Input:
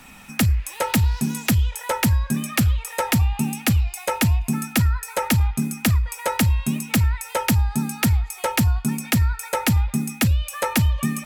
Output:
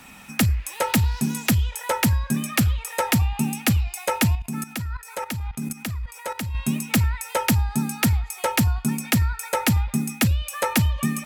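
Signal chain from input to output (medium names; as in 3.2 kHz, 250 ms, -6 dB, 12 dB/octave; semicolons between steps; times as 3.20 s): high-pass 66 Hz 6 dB/octave; 4.35–6.55 s: level held to a coarse grid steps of 14 dB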